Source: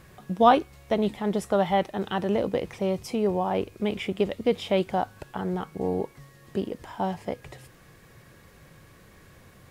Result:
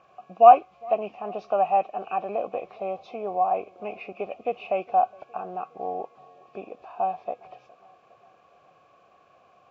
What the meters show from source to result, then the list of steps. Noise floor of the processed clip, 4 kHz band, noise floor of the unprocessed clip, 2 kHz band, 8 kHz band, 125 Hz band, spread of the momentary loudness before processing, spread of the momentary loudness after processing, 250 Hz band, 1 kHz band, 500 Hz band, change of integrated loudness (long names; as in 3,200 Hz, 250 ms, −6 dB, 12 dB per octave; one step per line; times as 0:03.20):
−59 dBFS, below −10 dB, −54 dBFS, −5.5 dB, below −20 dB, below −15 dB, 12 LU, 19 LU, −14.5 dB, +6.0 dB, 0.0 dB, +2.5 dB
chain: hearing-aid frequency compression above 1,800 Hz 1.5 to 1
formant filter a
tape delay 411 ms, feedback 71%, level −22.5 dB, low-pass 1,100 Hz
level +9 dB